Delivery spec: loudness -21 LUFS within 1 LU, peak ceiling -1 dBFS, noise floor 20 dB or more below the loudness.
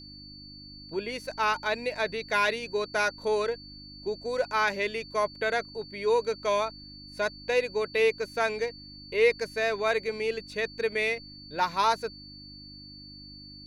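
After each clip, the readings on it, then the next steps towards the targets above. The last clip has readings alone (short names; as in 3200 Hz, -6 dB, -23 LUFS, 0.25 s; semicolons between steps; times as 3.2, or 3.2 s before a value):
hum 50 Hz; harmonics up to 300 Hz; hum level -48 dBFS; steady tone 4500 Hz; tone level -46 dBFS; loudness -28.5 LUFS; peak -12.0 dBFS; loudness target -21.0 LUFS
-> de-hum 50 Hz, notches 6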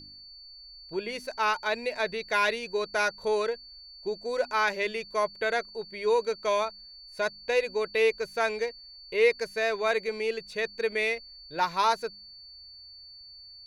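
hum none; steady tone 4500 Hz; tone level -46 dBFS
-> notch 4500 Hz, Q 30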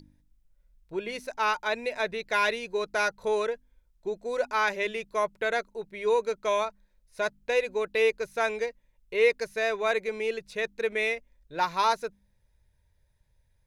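steady tone none; loudness -28.5 LUFS; peak -12.0 dBFS; loudness target -21.0 LUFS
-> gain +7.5 dB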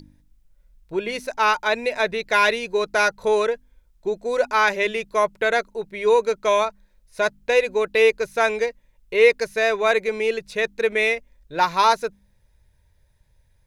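loudness -21.0 LUFS; peak -4.5 dBFS; noise floor -61 dBFS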